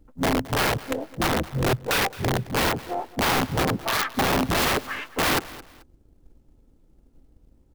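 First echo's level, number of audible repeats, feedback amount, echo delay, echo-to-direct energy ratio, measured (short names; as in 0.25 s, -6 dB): -18.5 dB, 2, 27%, 0.218 s, -18.0 dB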